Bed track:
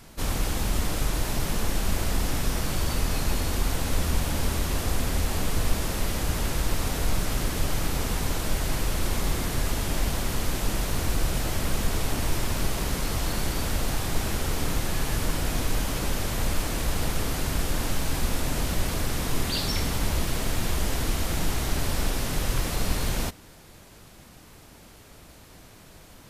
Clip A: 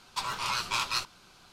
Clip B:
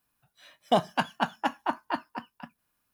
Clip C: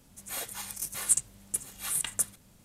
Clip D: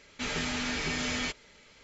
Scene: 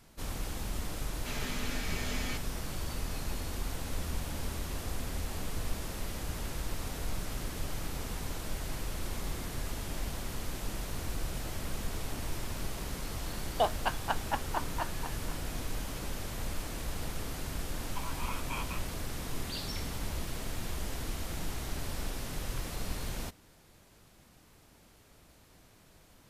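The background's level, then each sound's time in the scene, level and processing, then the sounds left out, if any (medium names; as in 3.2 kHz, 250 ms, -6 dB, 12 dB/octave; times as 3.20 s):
bed track -10.5 dB
1.06 s: add D -7.5 dB
12.88 s: add B -4.5 dB + Chebyshev high-pass 470 Hz
17.79 s: add A -6 dB + rippled Chebyshev low-pass 3.3 kHz, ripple 9 dB
not used: C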